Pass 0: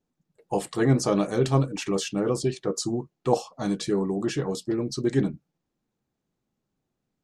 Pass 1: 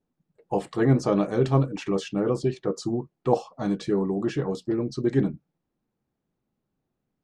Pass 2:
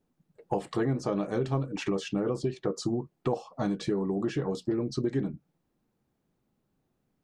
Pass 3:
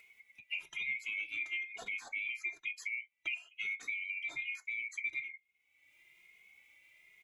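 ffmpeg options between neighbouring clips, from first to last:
-af "aemphasis=mode=reproduction:type=75fm"
-af "acompressor=threshold=0.0316:ratio=6,volume=1.58"
-filter_complex "[0:a]afftfilt=real='real(if(lt(b,920),b+92*(1-2*mod(floor(b/92),2)),b),0)':imag='imag(if(lt(b,920),b+92*(1-2*mod(floor(b/92),2)),b),0)':win_size=2048:overlap=0.75,acompressor=mode=upward:threshold=0.0224:ratio=2.5,asplit=2[s0][s1];[s1]adelay=2.4,afreqshift=1.1[s2];[s0][s2]amix=inputs=2:normalize=1,volume=0.422"

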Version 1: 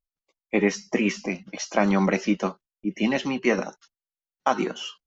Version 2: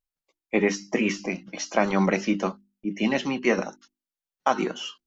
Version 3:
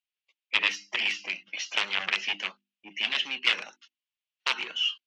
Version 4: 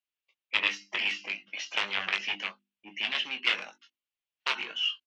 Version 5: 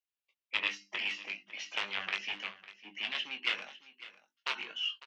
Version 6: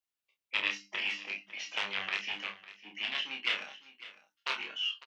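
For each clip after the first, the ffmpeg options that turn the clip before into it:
-af "bandreject=f=50:t=h:w=6,bandreject=f=100:t=h:w=6,bandreject=f=150:t=h:w=6,bandreject=f=200:t=h:w=6,bandreject=f=250:t=h:w=6,bandreject=f=300:t=h:w=6,bandreject=f=350:t=h:w=6"
-af "aeval=exprs='0.501*(cos(1*acos(clip(val(0)/0.501,-1,1)))-cos(1*PI/2))+0.2*(cos(7*acos(clip(val(0)/0.501,-1,1)))-cos(7*PI/2))':c=same,bandpass=f=2800:t=q:w=3.2:csg=0,volume=1.78"
-filter_complex "[0:a]highshelf=f=4500:g=-7.5,asplit=2[s0][s1];[s1]adelay=20,volume=0.447[s2];[s0][s2]amix=inputs=2:normalize=0,volume=0.891"
-af "aecho=1:1:552:0.141,volume=0.531"
-filter_complex "[0:a]asplit=2[s0][s1];[s1]adelay=30,volume=0.596[s2];[s0][s2]amix=inputs=2:normalize=0"

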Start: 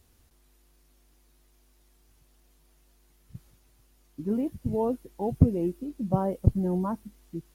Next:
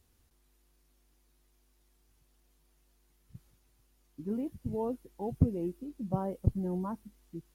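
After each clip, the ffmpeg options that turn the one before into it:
-af "equalizer=f=630:t=o:w=0.2:g=-3,volume=0.473"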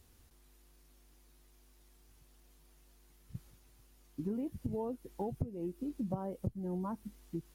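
-af "acompressor=threshold=0.0112:ratio=10,volume=1.88"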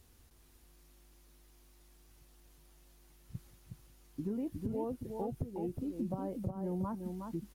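-filter_complex "[0:a]asplit=2[s0][s1];[s1]alimiter=level_in=2.11:limit=0.0631:level=0:latency=1:release=196,volume=0.473,volume=0.944[s2];[s0][s2]amix=inputs=2:normalize=0,aecho=1:1:365:0.531,volume=0.562"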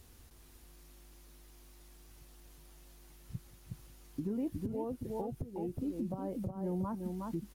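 -af "alimiter=level_in=2.82:limit=0.0631:level=0:latency=1:release=461,volume=0.355,volume=1.78"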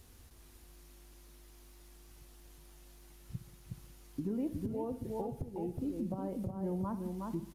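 -af "aecho=1:1:63|126|189|252|315|378:0.2|0.11|0.0604|0.0332|0.0183|0.01,aresample=32000,aresample=44100"

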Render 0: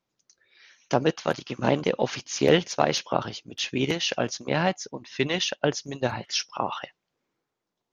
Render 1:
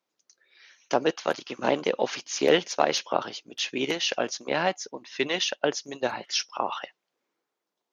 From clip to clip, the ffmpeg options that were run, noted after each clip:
-af "highpass=300"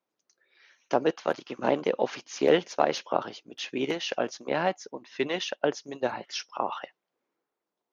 -af "highshelf=f=2400:g=-10"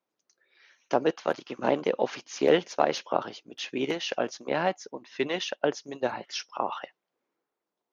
-af anull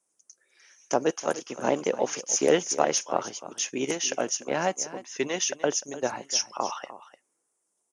-af "aecho=1:1:300:0.178,aexciter=amount=11.6:drive=8.2:freq=6300,aresample=22050,aresample=44100"

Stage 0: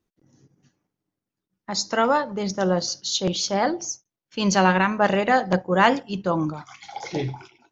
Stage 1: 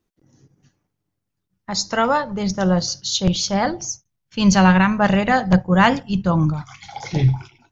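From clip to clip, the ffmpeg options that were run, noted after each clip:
-af "asubboost=boost=9.5:cutoff=120,volume=1.41"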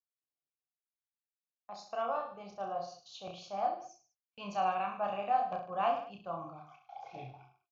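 -filter_complex "[0:a]asplit=3[s0][s1][s2];[s0]bandpass=f=730:t=q:w=8,volume=1[s3];[s1]bandpass=f=1090:t=q:w=8,volume=0.501[s4];[s2]bandpass=f=2440:t=q:w=8,volume=0.355[s5];[s3][s4][s5]amix=inputs=3:normalize=0,agate=range=0.0447:threshold=0.00251:ratio=16:detection=peak,aecho=1:1:30|64.5|104.2|149.8|202.3:0.631|0.398|0.251|0.158|0.1,volume=0.398"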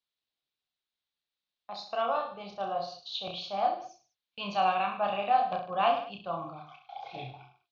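-af "lowpass=f=3800:t=q:w=3.8,volume=1.68"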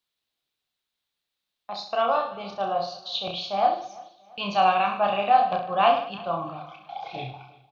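-af "aecho=1:1:342|684|1026:0.0794|0.0326|0.0134,volume=2.11"

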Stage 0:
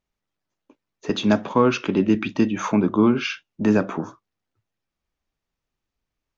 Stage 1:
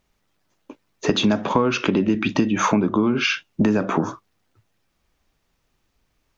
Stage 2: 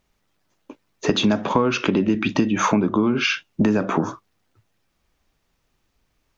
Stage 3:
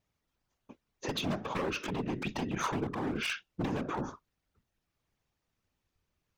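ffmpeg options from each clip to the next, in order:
-filter_complex "[0:a]asplit=2[s0][s1];[s1]alimiter=limit=0.133:level=0:latency=1,volume=1[s2];[s0][s2]amix=inputs=2:normalize=0,acompressor=threshold=0.0708:ratio=8,volume=2.37"
-af anull
-af "aeval=exprs='0.188*(abs(mod(val(0)/0.188+3,4)-2)-1)':c=same,afftfilt=real='hypot(re,im)*cos(2*PI*random(0))':imag='hypot(re,im)*sin(2*PI*random(1))':win_size=512:overlap=0.75,volume=0.501"

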